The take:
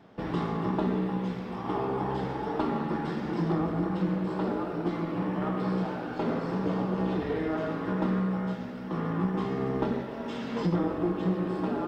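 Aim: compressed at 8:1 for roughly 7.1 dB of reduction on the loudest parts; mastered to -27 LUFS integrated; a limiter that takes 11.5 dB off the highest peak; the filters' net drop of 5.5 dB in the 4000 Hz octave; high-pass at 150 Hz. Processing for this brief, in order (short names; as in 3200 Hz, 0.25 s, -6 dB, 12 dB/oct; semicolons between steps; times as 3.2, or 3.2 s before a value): HPF 150 Hz; bell 4000 Hz -7.5 dB; compressor 8:1, threshold -31 dBFS; gain +14.5 dB; limiter -19 dBFS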